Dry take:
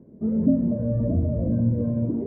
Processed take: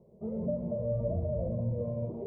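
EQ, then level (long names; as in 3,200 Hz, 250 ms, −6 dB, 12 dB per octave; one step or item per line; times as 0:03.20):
parametric band 93 Hz −4 dB 0.67 octaves
low-shelf EQ 200 Hz −6.5 dB
phaser with its sweep stopped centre 670 Hz, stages 4
0.0 dB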